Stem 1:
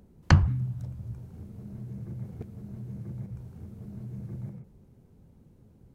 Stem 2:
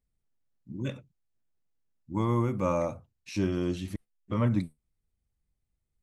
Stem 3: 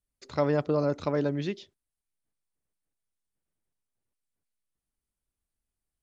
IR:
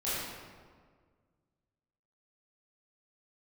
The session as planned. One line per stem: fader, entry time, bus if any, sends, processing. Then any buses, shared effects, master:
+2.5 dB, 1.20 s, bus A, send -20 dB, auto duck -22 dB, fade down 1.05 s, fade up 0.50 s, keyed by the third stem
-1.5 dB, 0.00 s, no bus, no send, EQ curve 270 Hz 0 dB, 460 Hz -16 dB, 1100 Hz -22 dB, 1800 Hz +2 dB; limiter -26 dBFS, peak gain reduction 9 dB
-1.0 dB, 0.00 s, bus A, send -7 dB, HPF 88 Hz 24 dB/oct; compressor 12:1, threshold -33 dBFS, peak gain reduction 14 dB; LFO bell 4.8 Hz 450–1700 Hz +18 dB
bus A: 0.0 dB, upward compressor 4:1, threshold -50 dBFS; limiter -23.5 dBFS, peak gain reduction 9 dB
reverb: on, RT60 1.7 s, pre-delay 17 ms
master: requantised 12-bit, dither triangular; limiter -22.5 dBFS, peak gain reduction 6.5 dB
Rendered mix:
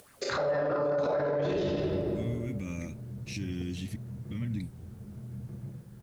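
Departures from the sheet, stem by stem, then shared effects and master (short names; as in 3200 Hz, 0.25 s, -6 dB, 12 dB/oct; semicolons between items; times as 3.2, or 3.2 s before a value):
stem 1 +2.5 dB -> -5.0 dB; stem 3 -1.0 dB -> +9.5 dB; reverb return +8.0 dB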